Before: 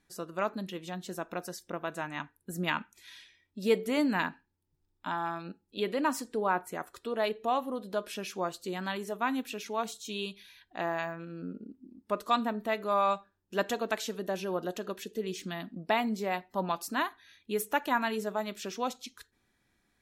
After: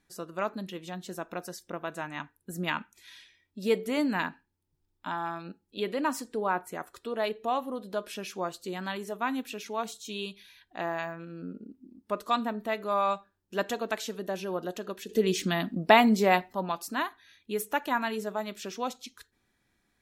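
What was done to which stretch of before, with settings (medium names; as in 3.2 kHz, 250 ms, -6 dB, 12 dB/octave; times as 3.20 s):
15.09–16.53 s: gain +9.5 dB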